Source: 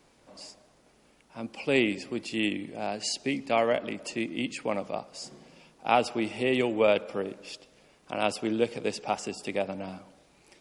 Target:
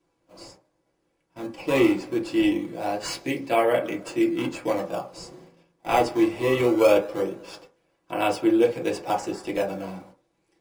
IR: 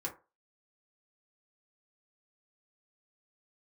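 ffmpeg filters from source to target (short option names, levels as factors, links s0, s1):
-filter_complex "[0:a]asplit=2[s0][s1];[s1]acrusher=samples=18:mix=1:aa=0.000001:lfo=1:lforange=28.8:lforate=0.21,volume=0.501[s2];[s0][s2]amix=inputs=2:normalize=0,agate=range=0.2:threshold=0.00355:ratio=16:detection=peak[s3];[1:a]atrim=start_sample=2205[s4];[s3][s4]afir=irnorm=-1:irlink=0"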